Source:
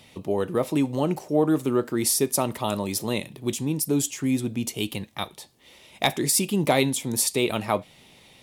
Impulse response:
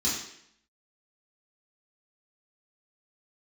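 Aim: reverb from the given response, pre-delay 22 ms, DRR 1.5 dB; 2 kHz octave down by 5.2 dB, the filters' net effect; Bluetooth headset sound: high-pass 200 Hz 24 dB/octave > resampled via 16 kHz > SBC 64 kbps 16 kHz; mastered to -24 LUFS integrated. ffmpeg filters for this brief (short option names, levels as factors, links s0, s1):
-filter_complex "[0:a]equalizer=f=2000:t=o:g=-6.5,asplit=2[s0][s1];[1:a]atrim=start_sample=2205,adelay=22[s2];[s1][s2]afir=irnorm=-1:irlink=0,volume=0.316[s3];[s0][s3]amix=inputs=2:normalize=0,highpass=f=200:w=0.5412,highpass=f=200:w=1.3066,aresample=16000,aresample=44100,volume=0.841" -ar 16000 -c:a sbc -b:a 64k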